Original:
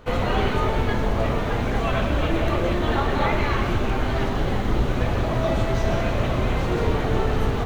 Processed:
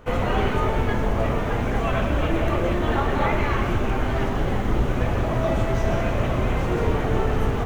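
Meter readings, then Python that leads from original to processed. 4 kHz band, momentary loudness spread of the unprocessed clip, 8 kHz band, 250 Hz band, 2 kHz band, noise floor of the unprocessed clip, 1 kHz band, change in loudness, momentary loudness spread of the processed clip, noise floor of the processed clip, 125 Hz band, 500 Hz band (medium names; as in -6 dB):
-3.5 dB, 2 LU, no reading, 0.0 dB, -0.5 dB, -24 dBFS, 0.0 dB, 0.0 dB, 2 LU, -24 dBFS, 0.0 dB, 0.0 dB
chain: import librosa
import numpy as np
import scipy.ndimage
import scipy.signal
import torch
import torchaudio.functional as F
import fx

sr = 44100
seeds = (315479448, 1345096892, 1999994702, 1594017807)

y = fx.peak_eq(x, sr, hz=4100.0, db=-7.5, octaves=0.59)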